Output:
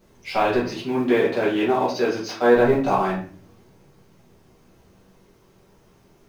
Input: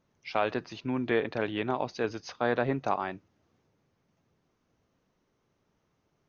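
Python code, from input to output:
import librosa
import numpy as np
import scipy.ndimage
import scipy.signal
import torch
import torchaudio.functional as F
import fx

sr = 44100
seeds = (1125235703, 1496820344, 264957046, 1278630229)

y = fx.law_mismatch(x, sr, coded='mu')
y = fx.highpass(y, sr, hz=180.0, slope=12, at=(0.68, 2.56))
y = fx.room_shoebox(y, sr, seeds[0], volume_m3=42.0, walls='mixed', distance_m=1.3)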